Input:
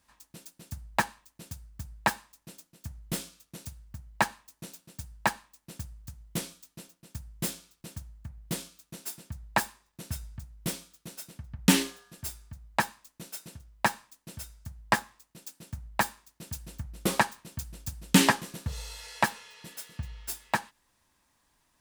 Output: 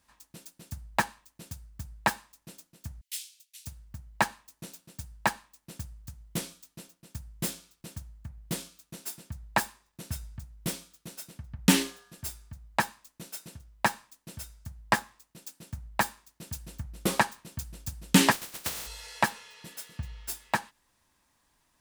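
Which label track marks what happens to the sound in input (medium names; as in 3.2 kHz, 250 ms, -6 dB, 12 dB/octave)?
3.010000	3.670000	inverse Chebyshev high-pass stop band from 700 Hz, stop band 60 dB
18.310000	18.860000	spectral contrast reduction exponent 0.19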